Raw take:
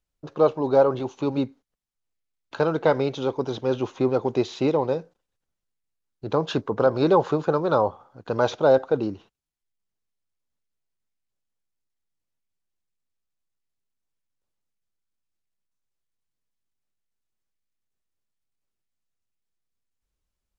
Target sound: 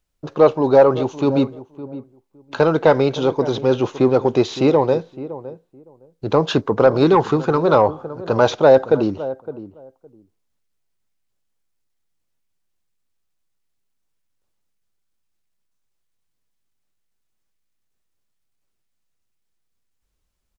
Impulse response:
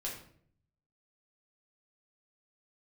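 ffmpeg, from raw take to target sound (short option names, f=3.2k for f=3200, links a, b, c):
-filter_complex "[0:a]asplit=2[a][b];[b]adelay=562,lowpass=f=810:p=1,volume=-14.5dB,asplit=2[c][d];[d]adelay=562,lowpass=f=810:p=1,volume=0.17[e];[c][e]amix=inputs=2:normalize=0[f];[a][f]amix=inputs=2:normalize=0,asoftclip=type=tanh:threshold=-8dB,asettb=1/sr,asplit=3[g][h][i];[g]atrim=end=7.044[j];[h]atrim=start=7.04:end=7.58,asetpts=PTS-STARTPTS,afade=t=in:d=0.004:c=qsin,afade=t=out:st=0.536:d=0.004:c=qsin,equalizer=f=580:t=o:w=0.37:g=-12[k];[i]atrim=start=7.576[l];[j][k]acrossfade=d=0.004:c1=hsin:c2=qsin[m];[m][l]acrossfade=d=0.004:c1=qsin:c2=hsin,volume=7.5dB"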